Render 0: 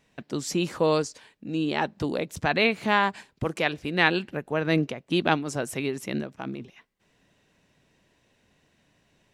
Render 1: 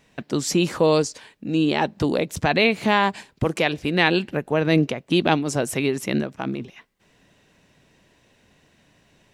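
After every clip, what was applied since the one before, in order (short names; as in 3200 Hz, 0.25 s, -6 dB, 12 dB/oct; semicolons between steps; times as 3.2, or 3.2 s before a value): dynamic EQ 1400 Hz, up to -5 dB, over -38 dBFS, Q 1.6; in parallel at -2.5 dB: limiter -18 dBFS, peak gain reduction 11 dB; on the sum: gain +2 dB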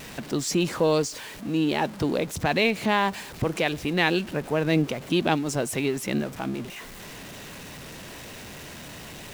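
zero-crossing step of -31 dBFS; gain -4.5 dB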